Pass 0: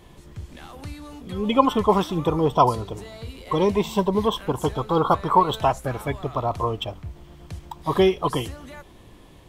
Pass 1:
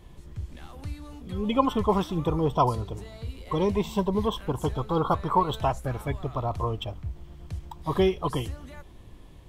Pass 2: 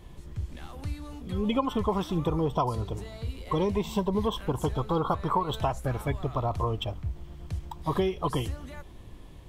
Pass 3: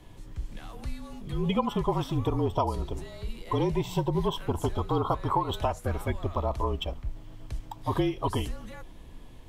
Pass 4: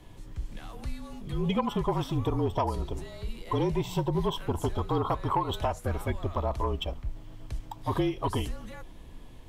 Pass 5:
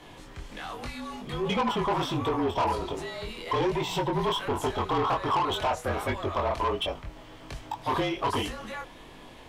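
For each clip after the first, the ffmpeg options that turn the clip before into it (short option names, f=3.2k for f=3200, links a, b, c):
-af "lowshelf=f=120:g=11,volume=-6dB"
-af "acompressor=threshold=-24dB:ratio=6,volume=1.5dB"
-af "afreqshift=-39"
-af "asoftclip=type=tanh:threshold=-16dB"
-filter_complex "[0:a]flanger=delay=20:depth=4.9:speed=1.3,asplit=2[a][b];[b]highpass=f=720:p=1,volume=21dB,asoftclip=type=tanh:threshold=-18dB[c];[a][c]amix=inputs=2:normalize=0,lowpass=f=3.5k:p=1,volume=-6dB"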